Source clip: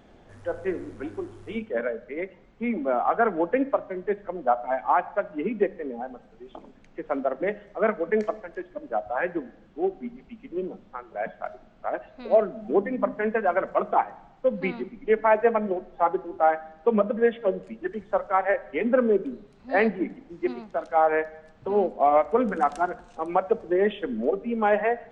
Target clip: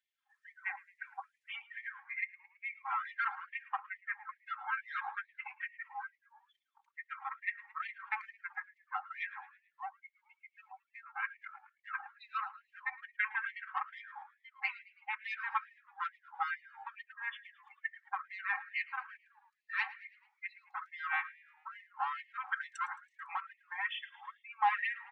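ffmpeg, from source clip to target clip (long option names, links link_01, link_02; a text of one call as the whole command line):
ffmpeg -i in.wav -filter_complex "[0:a]aeval=exprs='if(lt(val(0),0),0.447*val(0),val(0))':channel_layout=same,afftdn=noise_reduction=29:noise_floor=-46,aecho=1:1:3.8:0.82,asplit=2[link_01][link_02];[link_02]acompressor=threshold=-29dB:ratio=12,volume=0dB[link_03];[link_01][link_03]amix=inputs=2:normalize=0,alimiter=limit=-15dB:level=0:latency=1:release=87,acrossover=split=290|1300[link_04][link_05][link_06];[link_04]dynaudnorm=framelen=730:gausssize=9:maxgain=5.5dB[link_07];[link_07][link_05][link_06]amix=inputs=3:normalize=0,asplit=5[link_08][link_09][link_10][link_11][link_12];[link_09]adelay=109,afreqshift=37,volume=-20dB[link_13];[link_10]adelay=218,afreqshift=74,volume=-25.7dB[link_14];[link_11]adelay=327,afreqshift=111,volume=-31.4dB[link_15];[link_12]adelay=436,afreqshift=148,volume=-37dB[link_16];[link_08][link_13][link_14][link_15][link_16]amix=inputs=5:normalize=0,afftfilt=real='re*gte(b*sr/1024,740*pow(1800/740,0.5+0.5*sin(2*PI*2.3*pts/sr)))':imag='im*gte(b*sr/1024,740*pow(1800/740,0.5+0.5*sin(2*PI*2.3*pts/sr)))':win_size=1024:overlap=0.75,volume=-2dB" out.wav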